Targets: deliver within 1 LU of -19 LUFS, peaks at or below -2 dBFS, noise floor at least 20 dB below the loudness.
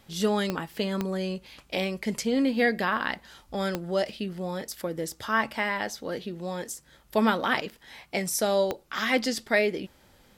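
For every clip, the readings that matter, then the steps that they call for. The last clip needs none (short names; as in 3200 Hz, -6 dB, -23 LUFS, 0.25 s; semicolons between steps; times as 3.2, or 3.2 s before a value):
clicks 4; loudness -28.5 LUFS; peak -9.0 dBFS; loudness target -19.0 LUFS
-> de-click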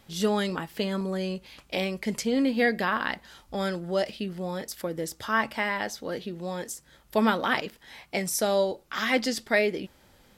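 clicks 0; loudness -28.5 LUFS; peak -9.0 dBFS; loudness target -19.0 LUFS
-> gain +9.5 dB; limiter -2 dBFS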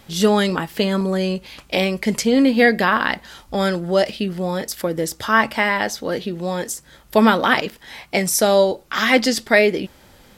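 loudness -19.0 LUFS; peak -2.0 dBFS; noise floor -50 dBFS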